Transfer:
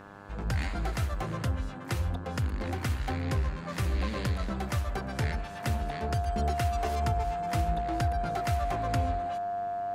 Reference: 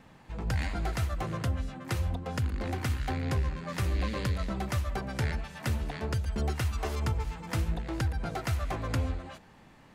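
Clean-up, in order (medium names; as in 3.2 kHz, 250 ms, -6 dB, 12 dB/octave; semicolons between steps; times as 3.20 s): de-hum 100.3 Hz, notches 17; band-stop 700 Hz, Q 30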